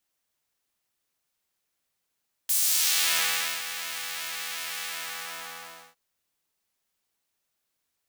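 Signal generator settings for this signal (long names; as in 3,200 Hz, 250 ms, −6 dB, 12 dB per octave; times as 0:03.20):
subtractive patch with pulse-width modulation E3, oscillator 2 square, interval +7 semitones, oscillator 2 level −9 dB, noise −12.5 dB, filter highpass, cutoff 800 Hz, Q 0.84, filter envelope 3.5 octaves, filter decay 0.70 s, attack 9.9 ms, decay 1.12 s, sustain −16 dB, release 1.12 s, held 2.34 s, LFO 2.7 Hz, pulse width 47%, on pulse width 6%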